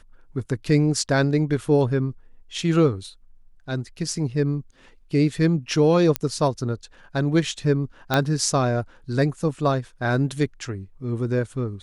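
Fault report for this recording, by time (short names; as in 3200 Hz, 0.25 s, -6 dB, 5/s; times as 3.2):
6.16 pop -5 dBFS
8.14 pop -6 dBFS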